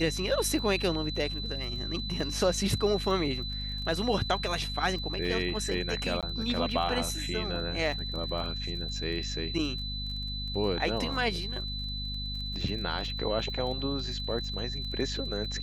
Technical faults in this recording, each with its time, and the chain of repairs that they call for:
crackle 25/s -38 dBFS
hum 50 Hz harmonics 5 -37 dBFS
tone 4000 Hz -36 dBFS
6.21–6.23 gap 17 ms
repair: de-click; de-hum 50 Hz, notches 5; notch 4000 Hz, Q 30; interpolate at 6.21, 17 ms

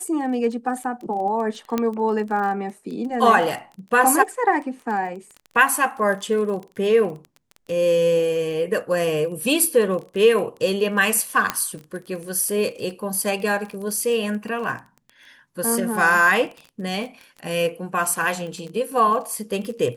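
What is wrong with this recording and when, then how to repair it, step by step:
crackle 22/s -30 dBFS
1.78 pop -9 dBFS
11.5 pop -5 dBFS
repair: de-click

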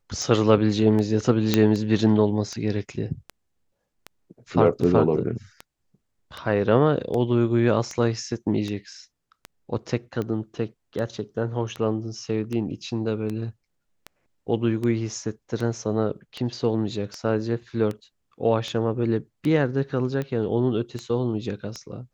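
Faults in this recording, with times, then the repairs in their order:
tick 78 rpm -18 dBFS
1.54 pop -4 dBFS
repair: de-click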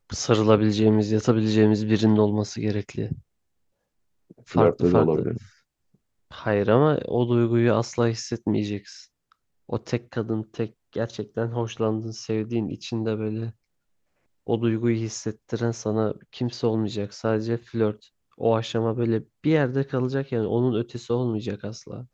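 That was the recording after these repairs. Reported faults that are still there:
none

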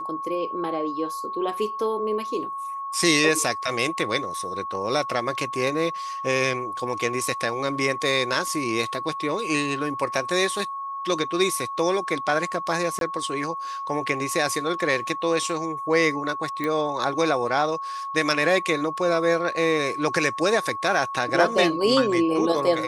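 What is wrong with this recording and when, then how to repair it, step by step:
tone 1100 Hz -29 dBFS
12.99–13.01 gap 22 ms
16.64 pop -15 dBFS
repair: de-click; notch 1100 Hz, Q 30; interpolate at 12.99, 22 ms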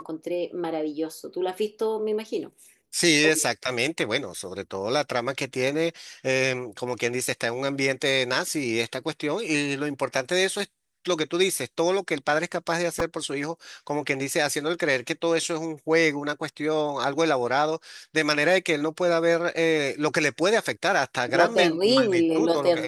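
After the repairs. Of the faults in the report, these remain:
none

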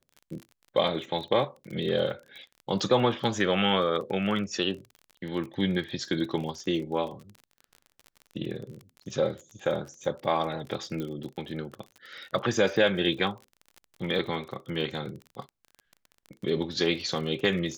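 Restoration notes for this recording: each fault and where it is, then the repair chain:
crackle 33/s -36 dBFS
11 pop -22 dBFS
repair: de-click

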